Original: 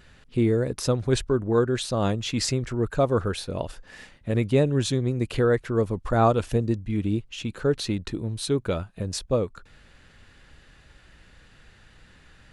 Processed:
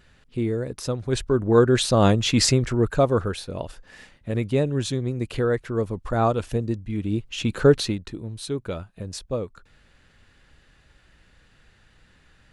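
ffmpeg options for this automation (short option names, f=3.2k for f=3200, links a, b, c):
-af "volume=17dB,afade=t=in:st=1.06:d=0.72:silence=0.298538,afade=t=out:st=2.42:d=0.98:silence=0.375837,afade=t=in:st=7.07:d=0.57:silence=0.316228,afade=t=out:st=7.64:d=0.36:silence=0.237137"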